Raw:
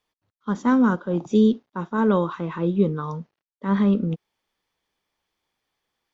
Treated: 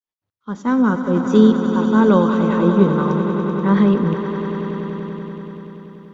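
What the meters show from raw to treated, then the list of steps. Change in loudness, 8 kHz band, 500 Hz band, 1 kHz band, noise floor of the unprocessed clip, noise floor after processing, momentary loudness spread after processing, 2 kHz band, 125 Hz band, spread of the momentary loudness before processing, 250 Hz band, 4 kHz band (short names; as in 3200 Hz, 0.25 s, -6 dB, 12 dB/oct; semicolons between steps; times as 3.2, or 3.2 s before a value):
+5.5 dB, n/a, +7.0 dB, +6.5 dB, under -85 dBFS, under -85 dBFS, 18 LU, +6.0 dB, +7.0 dB, 14 LU, +6.5 dB, +7.0 dB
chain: opening faded in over 1.23 s; swelling echo 96 ms, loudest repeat 5, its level -11.5 dB; gain +5.5 dB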